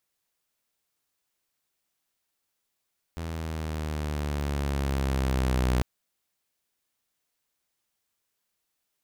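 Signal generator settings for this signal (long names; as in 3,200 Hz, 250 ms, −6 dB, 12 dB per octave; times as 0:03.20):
pitch glide with a swell saw, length 2.65 s, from 82.7 Hz, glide −5 semitones, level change +10.5 dB, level −19 dB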